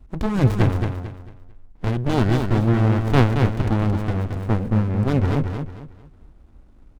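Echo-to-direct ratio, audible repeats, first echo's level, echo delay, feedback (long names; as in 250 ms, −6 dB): −5.5 dB, 3, −6.0 dB, 223 ms, 31%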